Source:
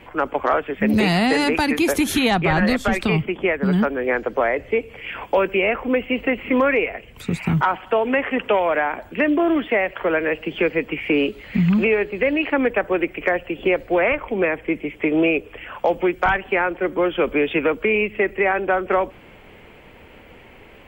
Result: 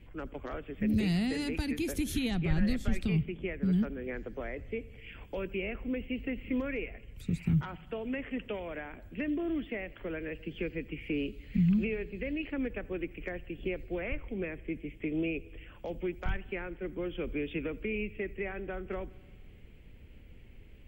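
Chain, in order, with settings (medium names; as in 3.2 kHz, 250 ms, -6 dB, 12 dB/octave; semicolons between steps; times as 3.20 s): amplifier tone stack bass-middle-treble 10-0-1; bucket-brigade echo 85 ms, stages 2048, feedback 68%, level -23.5 dB; trim +7 dB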